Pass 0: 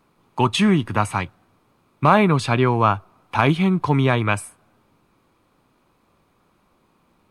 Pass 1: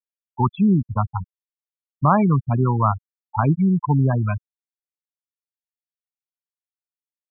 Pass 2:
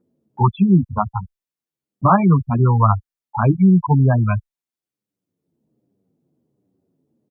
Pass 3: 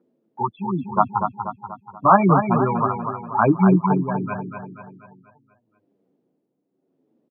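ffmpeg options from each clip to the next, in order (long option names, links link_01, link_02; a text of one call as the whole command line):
ffmpeg -i in.wav -af "afftfilt=real='re*gte(hypot(re,im),0.355)':imag='im*gte(hypot(re,im),0.355)':win_size=1024:overlap=0.75,lowpass=1100,equalizer=frequency=440:width=1:gain=-10,volume=3.5dB" out.wav
ffmpeg -i in.wav -filter_complex "[0:a]acrossover=split=120|360|940[link_01][link_02][link_03][link_04];[link_02]acompressor=mode=upward:threshold=-36dB:ratio=2.5[link_05];[link_01][link_05][link_03][link_04]amix=inputs=4:normalize=0,asplit=2[link_06][link_07];[link_07]adelay=8.6,afreqshift=-1.3[link_08];[link_06][link_08]amix=inputs=2:normalize=1,volume=6dB" out.wav
ffmpeg -i in.wav -filter_complex "[0:a]tremolo=f=0.84:d=0.78,highpass=280,lowpass=3000,asplit=2[link_01][link_02];[link_02]aecho=0:1:241|482|723|964|1205|1446:0.473|0.232|0.114|0.0557|0.0273|0.0134[link_03];[link_01][link_03]amix=inputs=2:normalize=0,volume=5dB" out.wav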